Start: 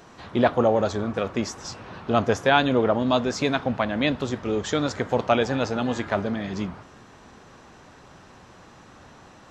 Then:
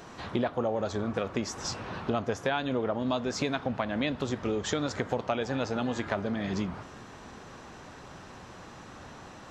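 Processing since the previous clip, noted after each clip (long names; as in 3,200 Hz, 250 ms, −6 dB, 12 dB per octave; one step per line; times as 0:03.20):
downward compressor 5 to 1, threshold −29 dBFS, peak gain reduction 14.5 dB
level +2 dB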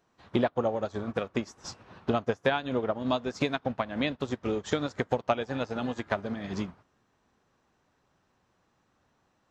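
expander for the loud parts 2.5 to 1, over −45 dBFS
level +5.5 dB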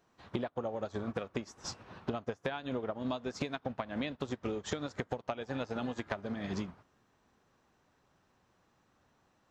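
downward compressor 10 to 1, threshold −32 dBFS, peak gain reduction 13 dB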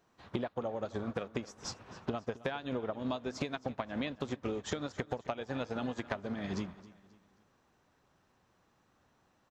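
repeating echo 267 ms, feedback 39%, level −18.5 dB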